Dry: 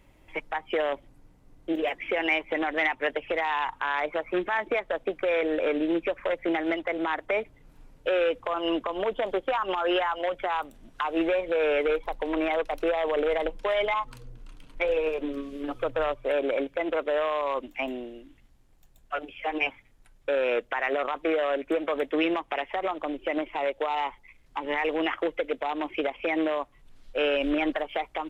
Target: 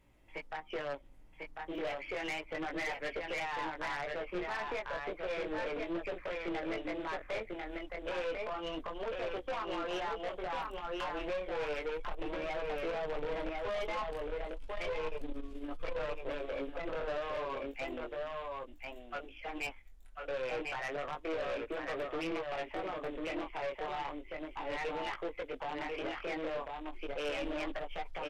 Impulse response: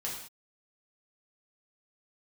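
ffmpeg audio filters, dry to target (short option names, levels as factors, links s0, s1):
-filter_complex "[0:a]asubboost=boost=7:cutoff=51,asplit=2[s0][s1];[s1]aecho=0:1:1046:0.631[s2];[s0][s2]amix=inputs=2:normalize=0,flanger=delay=17:depth=6.3:speed=0.32,aeval=exprs='(tanh(25.1*val(0)+0.35)-tanh(0.35))/25.1':c=same,volume=0.596"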